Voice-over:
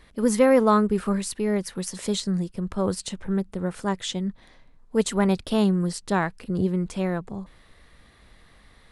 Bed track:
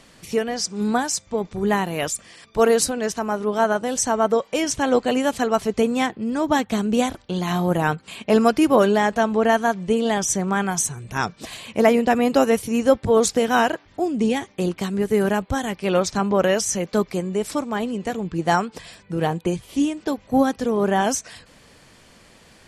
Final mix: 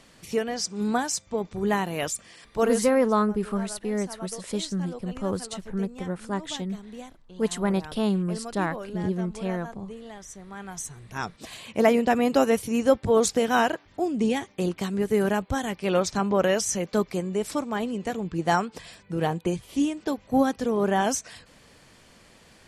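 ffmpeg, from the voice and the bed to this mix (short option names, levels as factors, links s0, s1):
-filter_complex "[0:a]adelay=2450,volume=0.668[s0];[1:a]volume=4.73,afade=t=out:st=2.44:d=0.59:silence=0.141254,afade=t=in:st=10.48:d=1.36:silence=0.133352[s1];[s0][s1]amix=inputs=2:normalize=0"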